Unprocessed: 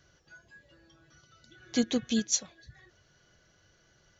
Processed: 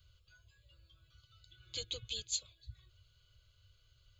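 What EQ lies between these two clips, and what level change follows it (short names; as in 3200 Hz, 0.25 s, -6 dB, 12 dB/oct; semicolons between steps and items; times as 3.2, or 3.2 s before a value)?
EQ curve 110 Hz 0 dB, 190 Hz -25 dB, 1800 Hz -14 dB, 4800 Hz 0 dB; dynamic EQ 1300 Hz, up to -5 dB, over -60 dBFS, Q 0.78; fixed phaser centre 1200 Hz, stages 8; +5.5 dB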